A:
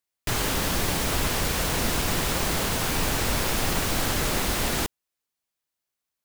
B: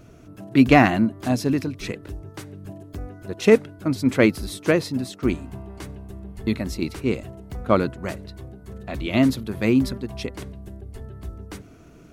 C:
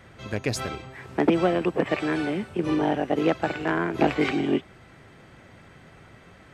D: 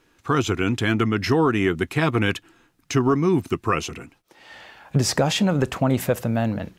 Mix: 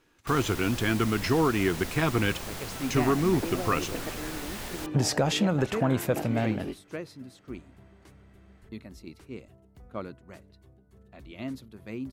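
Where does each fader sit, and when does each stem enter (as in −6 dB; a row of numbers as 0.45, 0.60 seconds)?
−12.5, −18.0, −13.5, −5.0 decibels; 0.00, 2.25, 2.15, 0.00 seconds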